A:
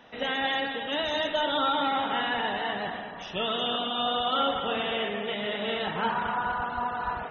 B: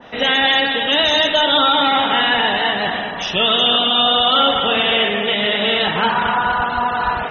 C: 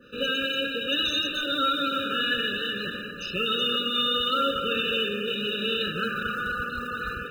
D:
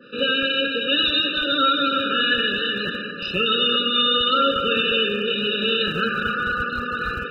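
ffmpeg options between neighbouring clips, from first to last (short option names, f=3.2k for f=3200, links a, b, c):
-filter_complex "[0:a]asplit=2[a][b];[b]alimiter=level_in=0.5dB:limit=-24dB:level=0:latency=1:release=353,volume=-0.5dB,volume=2dB[c];[a][c]amix=inputs=2:normalize=0,adynamicequalizer=threshold=0.0112:dfrequency=2000:dqfactor=0.7:tfrequency=2000:tqfactor=0.7:attack=5:release=100:ratio=0.375:range=3.5:mode=boostabove:tftype=highshelf,volume=6dB"
-af "acrusher=bits=7:mode=log:mix=0:aa=0.000001,afftfilt=real='re*eq(mod(floor(b*sr/1024/600),2),0)':imag='im*eq(mod(floor(b*sr/1024/600),2),0)':win_size=1024:overlap=0.75,volume=-8dB"
-filter_complex "[0:a]aresample=11025,aresample=44100,acrossover=split=120[a][b];[a]acrusher=bits=7:mix=0:aa=0.000001[c];[c][b]amix=inputs=2:normalize=0,volume=6dB"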